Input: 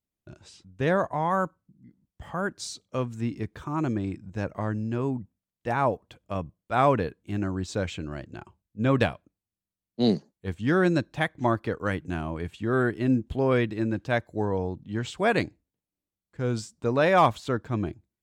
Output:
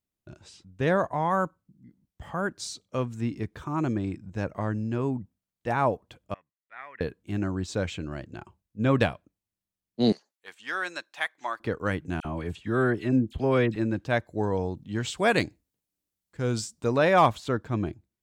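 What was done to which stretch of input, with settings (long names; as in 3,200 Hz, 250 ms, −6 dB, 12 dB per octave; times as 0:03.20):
0:06.34–0:07.01: resonant band-pass 1,900 Hz, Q 10
0:10.12–0:11.60: high-pass filter 1,100 Hz
0:12.20–0:13.76: all-pass dispersion lows, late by 49 ms, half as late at 1,900 Hz
0:14.43–0:16.98: high-shelf EQ 3,400 Hz +7.5 dB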